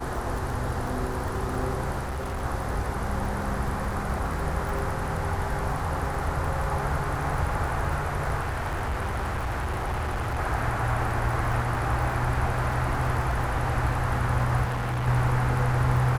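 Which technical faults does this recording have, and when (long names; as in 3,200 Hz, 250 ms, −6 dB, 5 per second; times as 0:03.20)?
surface crackle 27 per second −31 dBFS
0:02.02–0:02.44: clipping −27.5 dBFS
0:08.40–0:10.39: clipping −25 dBFS
0:14.64–0:15.08: clipping −25 dBFS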